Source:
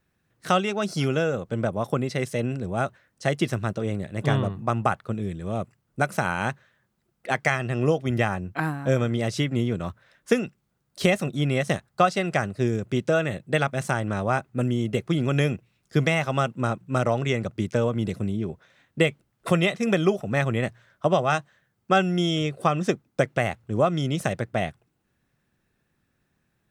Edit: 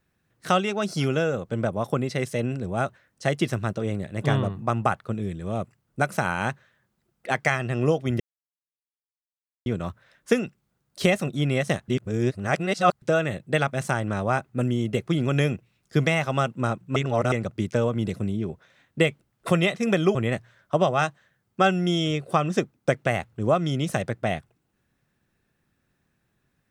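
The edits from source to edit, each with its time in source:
8.20–9.66 s: mute
11.88–13.02 s: reverse
16.96–17.32 s: reverse
20.15–20.46 s: delete

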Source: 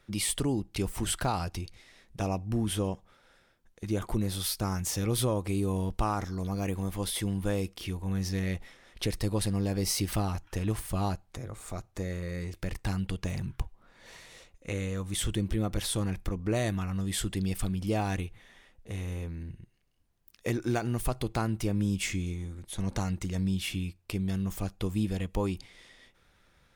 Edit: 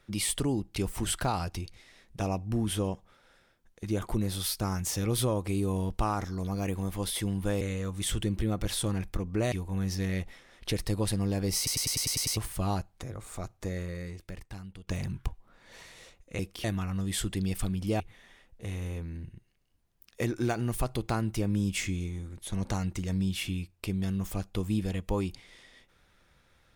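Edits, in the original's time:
7.61–7.86 s: swap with 14.73–16.64 s
9.91 s: stutter in place 0.10 s, 8 plays
12.15–13.21 s: fade out quadratic, to -14 dB
18.00–18.26 s: delete

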